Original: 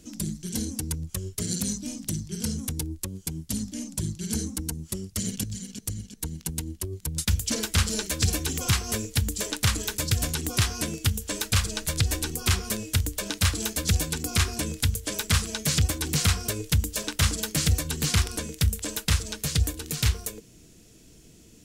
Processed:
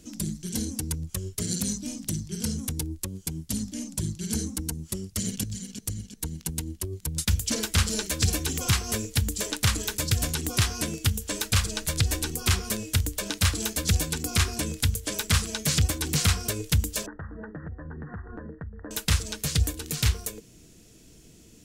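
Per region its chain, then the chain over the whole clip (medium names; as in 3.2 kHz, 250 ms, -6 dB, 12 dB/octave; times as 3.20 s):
17.06–18.91 s: Chebyshev low-pass 1.9 kHz, order 10 + compression 12:1, threshold -34 dBFS
whole clip: none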